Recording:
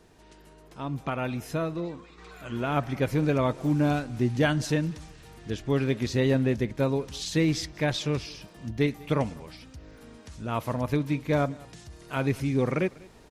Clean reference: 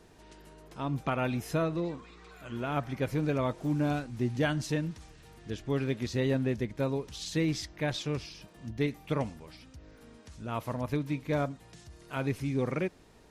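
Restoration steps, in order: inverse comb 196 ms -23.5 dB; gain correction -5 dB, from 2.18 s

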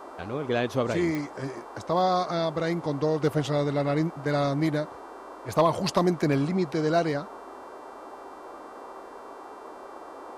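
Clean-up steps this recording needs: clip repair -12 dBFS; de-click; de-hum 391 Hz, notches 30; noise print and reduce 29 dB

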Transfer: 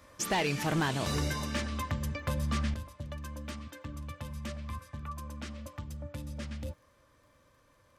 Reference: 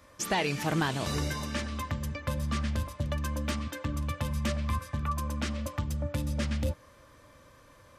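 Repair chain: clip repair -23.5 dBFS; de-click; trim 0 dB, from 2.74 s +9 dB

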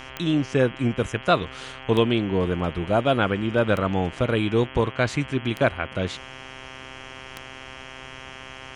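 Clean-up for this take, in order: de-click; de-hum 131.4 Hz, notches 25

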